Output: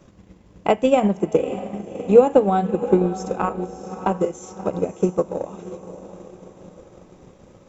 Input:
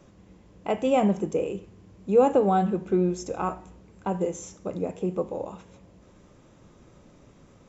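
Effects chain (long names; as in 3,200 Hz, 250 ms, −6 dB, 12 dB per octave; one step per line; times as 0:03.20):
feedback delay with all-pass diffusion 613 ms, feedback 49%, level −10 dB
transient designer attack +9 dB, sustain −4 dB
level +2 dB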